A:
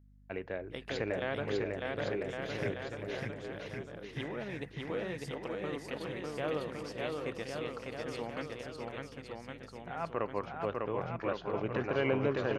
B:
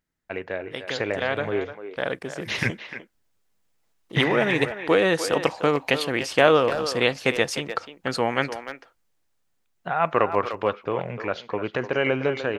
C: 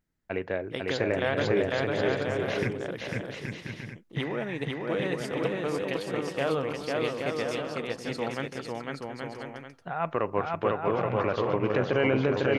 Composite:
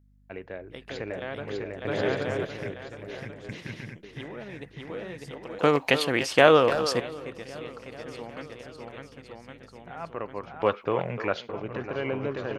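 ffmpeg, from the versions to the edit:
-filter_complex "[2:a]asplit=2[a][b];[1:a]asplit=2[c][d];[0:a]asplit=5[e][f][g][h][i];[e]atrim=end=1.852[j];[a]atrim=start=1.848:end=2.452[k];[f]atrim=start=2.448:end=3.492[l];[b]atrim=start=3.488:end=4.032[m];[g]atrim=start=4.028:end=5.592[n];[c]atrim=start=5.588:end=7.002[o];[h]atrim=start=6.998:end=10.622[p];[d]atrim=start=10.618:end=11.492[q];[i]atrim=start=11.488[r];[j][k]acrossfade=d=0.004:c1=hsin:c2=hsin[s];[s][l]acrossfade=d=0.004:c1=hsin:c2=hsin[t];[t][m]acrossfade=d=0.004:c1=hsin:c2=hsin[u];[u][n]acrossfade=d=0.004:c1=hsin:c2=hsin[v];[v][o]acrossfade=d=0.004:c1=hsin:c2=hsin[w];[w][p]acrossfade=d=0.004:c1=hsin:c2=hsin[x];[x][q]acrossfade=d=0.004:c1=hsin:c2=hsin[y];[y][r]acrossfade=d=0.004:c1=hsin:c2=hsin"

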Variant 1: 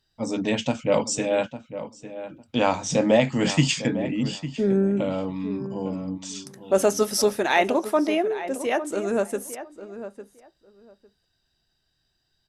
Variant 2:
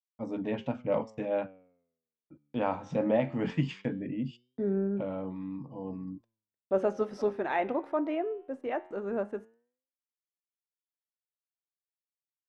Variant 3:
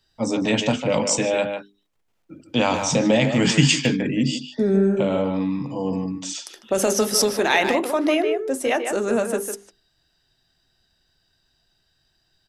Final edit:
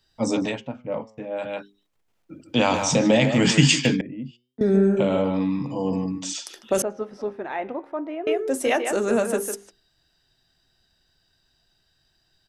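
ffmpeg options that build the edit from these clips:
-filter_complex "[1:a]asplit=3[a][b][c];[2:a]asplit=4[d][e][f][g];[d]atrim=end=0.62[h];[a]atrim=start=0.38:end=1.59[i];[e]atrim=start=1.35:end=4.012[j];[b]atrim=start=4.008:end=4.612[k];[f]atrim=start=4.608:end=6.822[l];[c]atrim=start=6.818:end=8.272[m];[g]atrim=start=8.268[n];[h][i]acrossfade=d=0.24:c1=tri:c2=tri[o];[o][j]acrossfade=d=0.24:c1=tri:c2=tri[p];[p][k]acrossfade=d=0.004:c1=hsin:c2=hsin[q];[q][l]acrossfade=d=0.004:c1=hsin:c2=hsin[r];[r][m]acrossfade=d=0.004:c1=hsin:c2=hsin[s];[s][n]acrossfade=d=0.004:c1=hsin:c2=hsin"

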